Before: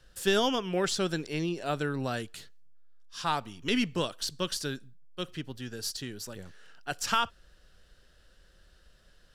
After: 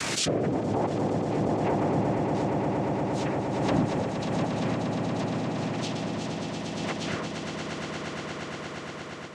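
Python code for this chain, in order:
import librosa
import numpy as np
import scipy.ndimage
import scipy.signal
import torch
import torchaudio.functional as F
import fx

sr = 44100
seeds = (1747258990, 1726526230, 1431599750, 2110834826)

p1 = fx.noise_vocoder(x, sr, seeds[0], bands=4)
p2 = fx.env_lowpass_down(p1, sr, base_hz=920.0, full_db=-27.5)
p3 = fx.rotary(p2, sr, hz=1.0)
p4 = fx.echo_swell(p3, sr, ms=117, loudest=8, wet_db=-8)
p5 = 10.0 ** (-27.0 / 20.0) * np.tanh(p4 / 10.0 ** (-27.0 / 20.0))
p6 = p4 + (p5 * librosa.db_to_amplitude(-4.0))
y = fx.pre_swell(p6, sr, db_per_s=26.0)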